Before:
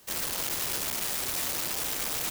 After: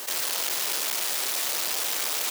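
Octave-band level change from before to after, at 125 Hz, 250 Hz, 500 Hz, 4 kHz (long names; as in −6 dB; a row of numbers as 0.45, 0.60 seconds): below −15 dB, −4.5 dB, +1.5 dB, +5.5 dB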